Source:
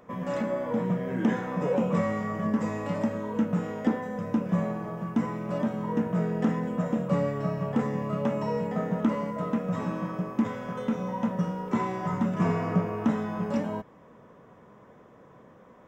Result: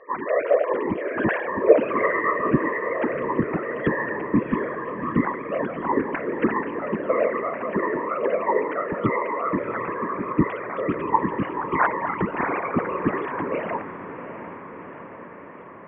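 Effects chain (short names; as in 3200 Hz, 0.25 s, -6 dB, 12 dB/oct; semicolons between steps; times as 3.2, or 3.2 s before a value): sine-wave speech; bell 2200 Hz +13.5 dB 1.7 oct; whisperiser; air absorption 280 m; diffused feedback echo 0.72 s, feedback 65%, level -12 dB; gain +2.5 dB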